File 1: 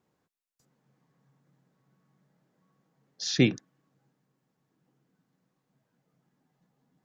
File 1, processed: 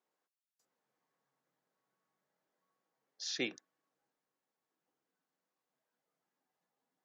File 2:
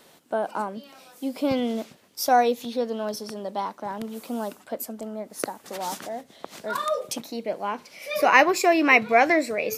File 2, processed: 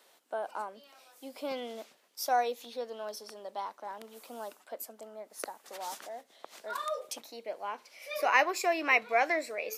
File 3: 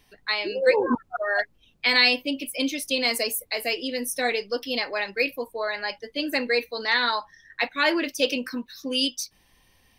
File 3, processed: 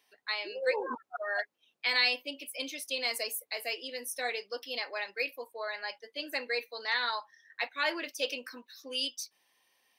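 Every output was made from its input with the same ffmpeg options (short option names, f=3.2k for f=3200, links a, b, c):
-af "highpass=480,volume=-8dB"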